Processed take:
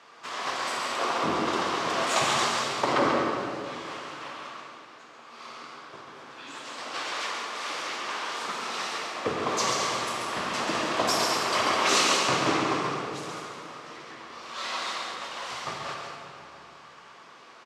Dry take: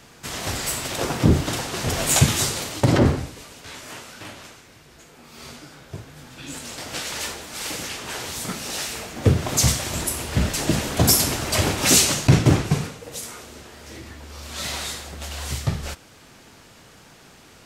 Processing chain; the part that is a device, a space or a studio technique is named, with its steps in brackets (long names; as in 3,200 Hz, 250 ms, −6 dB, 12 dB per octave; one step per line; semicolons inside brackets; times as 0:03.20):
station announcement (band-pass filter 440–4,400 Hz; parametric band 1,100 Hz +10.5 dB 0.44 octaves; loudspeakers that aren't time-aligned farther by 47 metres −5 dB, 72 metres −10 dB; convolution reverb RT60 2.6 s, pre-delay 13 ms, DRR 1 dB)
level −4.5 dB